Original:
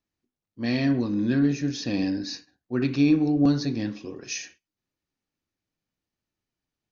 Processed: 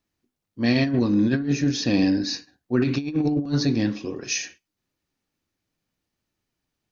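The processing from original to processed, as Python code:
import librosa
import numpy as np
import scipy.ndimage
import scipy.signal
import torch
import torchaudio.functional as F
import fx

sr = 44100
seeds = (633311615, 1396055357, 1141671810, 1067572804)

y = fx.over_compress(x, sr, threshold_db=-24.0, ratio=-0.5)
y = y * librosa.db_to_amplitude(4.0)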